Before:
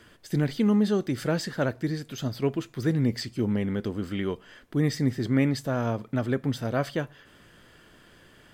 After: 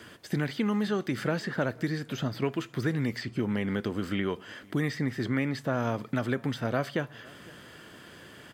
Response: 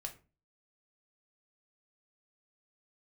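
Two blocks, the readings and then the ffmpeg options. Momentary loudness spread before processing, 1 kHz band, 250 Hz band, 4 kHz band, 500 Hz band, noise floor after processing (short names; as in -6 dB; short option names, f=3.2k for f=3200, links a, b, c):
8 LU, 0.0 dB, -4.0 dB, -2.0 dB, -2.5 dB, -51 dBFS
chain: -filter_complex "[0:a]acrossover=split=940|2800[a][b][c];[a]acompressor=threshold=-34dB:ratio=4[d];[b]acompressor=threshold=-40dB:ratio=4[e];[c]acompressor=threshold=-55dB:ratio=4[f];[d][e][f]amix=inputs=3:normalize=0,highpass=94,asplit=2[g][h];[h]adelay=507.3,volume=-24dB,highshelf=f=4k:g=-11.4[i];[g][i]amix=inputs=2:normalize=0,volume=6dB"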